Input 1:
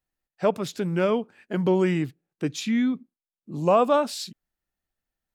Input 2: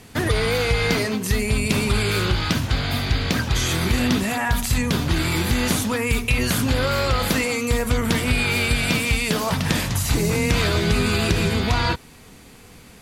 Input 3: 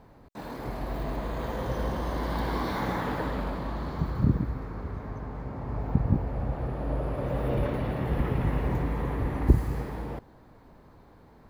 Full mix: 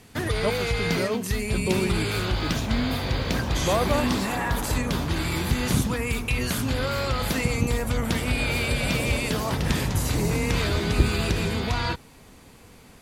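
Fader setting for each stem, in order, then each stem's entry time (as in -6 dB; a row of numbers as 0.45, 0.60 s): -5.5, -5.5, -1.0 dB; 0.00, 0.00, 1.50 s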